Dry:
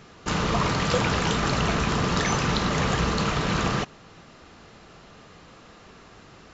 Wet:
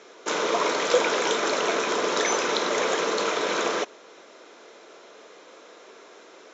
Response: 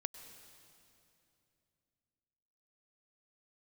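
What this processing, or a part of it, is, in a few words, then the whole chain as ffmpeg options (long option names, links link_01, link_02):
phone speaker on a table: -af "highpass=frequency=380:width=0.5412,highpass=frequency=380:width=1.3066,equalizer=frequency=790:width_type=q:width=4:gain=-8,equalizer=frequency=1200:width_type=q:width=4:gain=-8,equalizer=frequency=1800:width_type=q:width=4:gain=-7,equalizer=frequency=2800:width_type=q:width=4:gain=-9,equalizer=frequency=4600:width_type=q:width=4:gain=-10,lowpass=frequency=6800:width=0.5412,lowpass=frequency=6800:width=1.3066,volume=7dB"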